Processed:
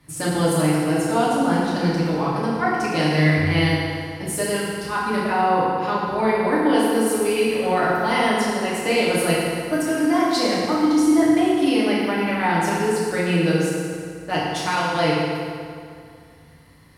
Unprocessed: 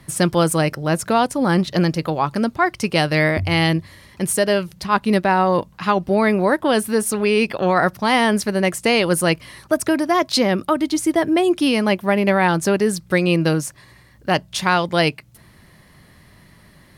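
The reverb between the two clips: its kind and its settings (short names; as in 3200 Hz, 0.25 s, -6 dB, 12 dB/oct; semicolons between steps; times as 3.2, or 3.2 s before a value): FDN reverb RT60 2.3 s, low-frequency decay 1×, high-frequency decay 0.75×, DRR -8.5 dB; gain -11.5 dB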